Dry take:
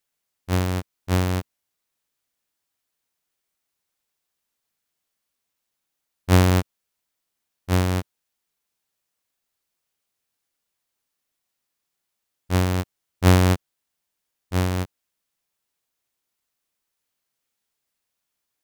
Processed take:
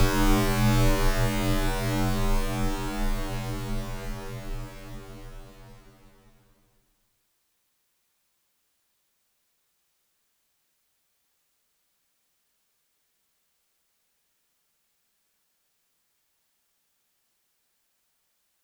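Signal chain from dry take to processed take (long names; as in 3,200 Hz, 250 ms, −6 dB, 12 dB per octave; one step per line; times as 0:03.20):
extreme stretch with random phases 15×, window 1.00 s, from 0:01.41
frequency shifter −64 Hz
level +7 dB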